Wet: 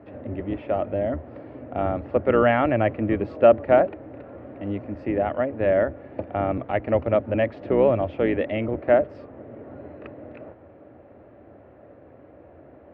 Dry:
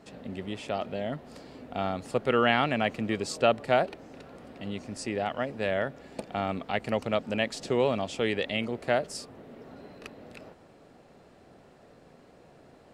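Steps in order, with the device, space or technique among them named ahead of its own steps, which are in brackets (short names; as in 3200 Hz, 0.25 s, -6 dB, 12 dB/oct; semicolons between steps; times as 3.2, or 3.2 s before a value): sub-octave bass pedal (octaver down 1 oct, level 0 dB; speaker cabinet 69–2200 Hz, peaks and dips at 82 Hz +8 dB, 160 Hz -8 dB, 310 Hz +9 dB, 580 Hz +9 dB); gain +2 dB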